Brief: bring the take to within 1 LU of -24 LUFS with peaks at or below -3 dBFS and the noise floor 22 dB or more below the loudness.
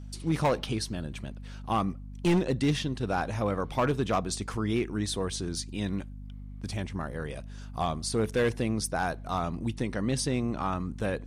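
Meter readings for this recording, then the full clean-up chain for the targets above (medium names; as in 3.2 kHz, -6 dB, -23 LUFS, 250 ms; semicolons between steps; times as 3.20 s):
clipped samples 1.0%; clipping level -19.5 dBFS; hum 50 Hz; highest harmonic 250 Hz; hum level -39 dBFS; loudness -30.5 LUFS; peak level -19.5 dBFS; loudness target -24.0 LUFS
-> clip repair -19.5 dBFS; de-hum 50 Hz, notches 5; trim +6.5 dB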